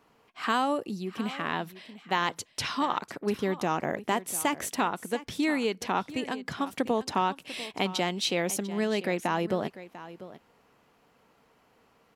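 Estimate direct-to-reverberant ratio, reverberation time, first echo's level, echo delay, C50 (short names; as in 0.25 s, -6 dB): none, none, -15.5 dB, 0.695 s, none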